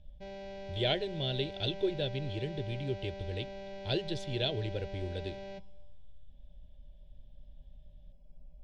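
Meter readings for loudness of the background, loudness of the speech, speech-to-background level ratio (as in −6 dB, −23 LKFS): −45.0 LKFS, −36.0 LKFS, 9.0 dB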